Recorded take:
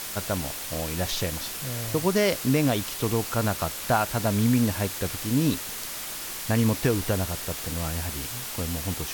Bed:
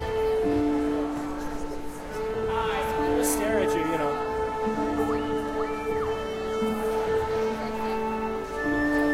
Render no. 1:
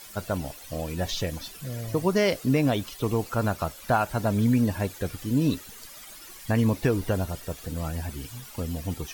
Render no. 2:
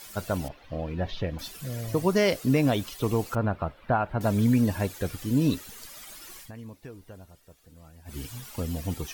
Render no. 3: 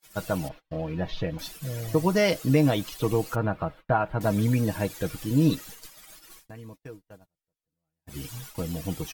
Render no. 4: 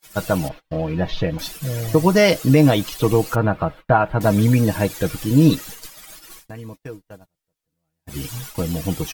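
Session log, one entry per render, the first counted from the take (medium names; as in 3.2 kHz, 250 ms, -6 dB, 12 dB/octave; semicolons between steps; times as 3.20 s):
noise reduction 14 dB, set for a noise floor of -35 dBFS
0.48–1.39 s: distance through air 330 m; 3.35–4.21 s: distance through air 490 m; 6.39–8.17 s: dip -20 dB, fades 0.12 s
gate -43 dBFS, range -34 dB; comb 6.3 ms, depth 51%
trim +8 dB; peak limiter -2 dBFS, peak gain reduction 2 dB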